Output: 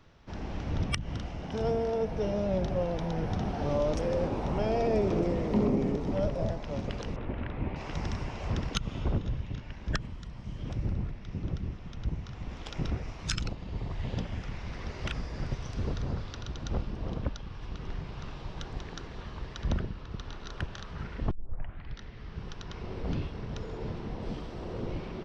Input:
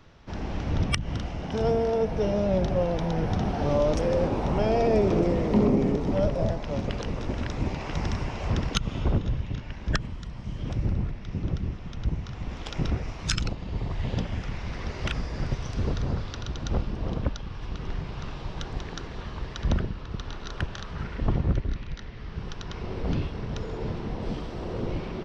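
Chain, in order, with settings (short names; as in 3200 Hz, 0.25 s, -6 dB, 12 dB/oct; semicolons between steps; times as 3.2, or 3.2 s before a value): 7.16–7.76 LPF 2900 Hz 24 dB/oct; 21.31 tape start 0.69 s; gain -5 dB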